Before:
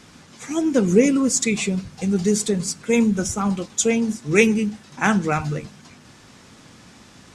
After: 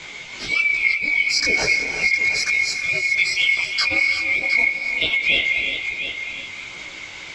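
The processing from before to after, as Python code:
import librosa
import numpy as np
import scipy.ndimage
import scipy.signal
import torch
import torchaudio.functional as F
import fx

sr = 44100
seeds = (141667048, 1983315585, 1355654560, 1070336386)

p1 = fx.band_swap(x, sr, width_hz=2000)
p2 = scipy.signal.sosfilt(scipy.signal.butter(4, 6300.0, 'lowpass', fs=sr, output='sos'), p1)
p3 = fx.over_compress(p2, sr, threshold_db=-20.0, ratio=-0.5)
p4 = fx.chorus_voices(p3, sr, voices=2, hz=1.1, base_ms=19, depth_ms=3.0, mix_pct=50)
p5 = p4 + fx.echo_single(p4, sr, ms=712, db=-13.0, dry=0)
p6 = fx.rev_gated(p5, sr, seeds[0], gate_ms=400, shape='rising', drr_db=7.5)
p7 = fx.band_squash(p6, sr, depth_pct=40)
y = p7 * 10.0 ** (4.5 / 20.0)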